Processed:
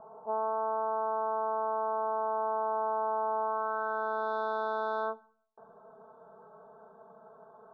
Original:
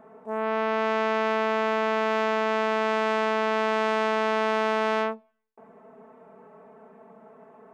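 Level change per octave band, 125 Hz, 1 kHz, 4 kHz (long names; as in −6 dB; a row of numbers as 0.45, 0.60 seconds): can't be measured, −4.0 dB, below −20 dB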